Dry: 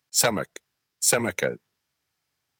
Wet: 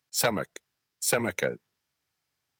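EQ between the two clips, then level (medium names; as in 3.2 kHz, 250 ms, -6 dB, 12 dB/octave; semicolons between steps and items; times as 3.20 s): dynamic bell 7.1 kHz, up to -7 dB, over -35 dBFS, Q 1.4; -2.5 dB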